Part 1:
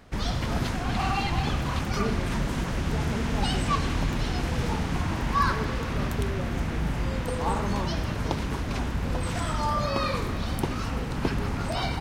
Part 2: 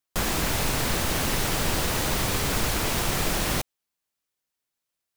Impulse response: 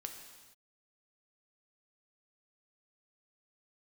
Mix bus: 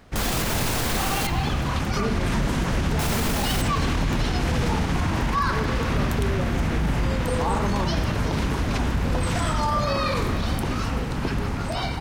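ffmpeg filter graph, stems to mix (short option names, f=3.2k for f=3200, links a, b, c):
-filter_complex "[0:a]dynaudnorm=f=560:g=7:m=5dB,volume=1.5dB[a];[1:a]volume=1dB,asplit=3[b][c][d];[b]atrim=end=1.27,asetpts=PTS-STARTPTS,afade=t=out:st=1.266:d=0.004:c=hsin[e];[c]atrim=start=1.27:end=2.99,asetpts=PTS-STARTPTS,volume=0[f];[d]atrim=start=2.99,asetpts=PTS-STARTPTS,afade=t=in:d=0.004:c=hsin[g];[e][f][g]concat=n=3:v=0:a=1,asplit=2[h][i];[i]volume=-7.5dB[j];[2:a]atrim=start_sample=2205[k];[j][k]afir=irnorm=-1:irlink=0[l];[a][h][l]amix=inputs=3:normalize=0,alimiter=limit=-14.5dB:level=0:latency=1:release=30"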